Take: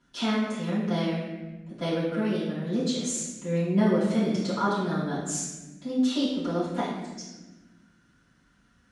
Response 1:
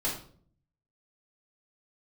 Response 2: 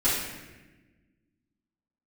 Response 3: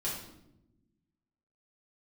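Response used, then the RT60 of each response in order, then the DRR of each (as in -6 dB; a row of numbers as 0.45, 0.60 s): 2; 0.50, 1.2, 0.90 s; -5.5, -12.0, -7.5 dB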